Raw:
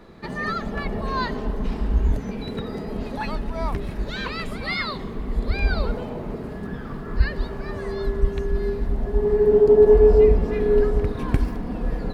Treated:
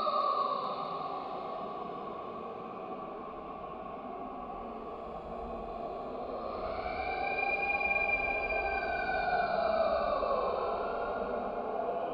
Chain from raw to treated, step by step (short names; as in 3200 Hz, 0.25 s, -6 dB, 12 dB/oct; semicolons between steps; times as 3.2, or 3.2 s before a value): one-sided clip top -14.5 dBFS; vowel filter a; Paulstretch 11×, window 0.10 s, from 4.89; on a send: multi-head echo 0.214 s, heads first and third, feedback 44%, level -11.5 dB; on the sum: gain +8 dB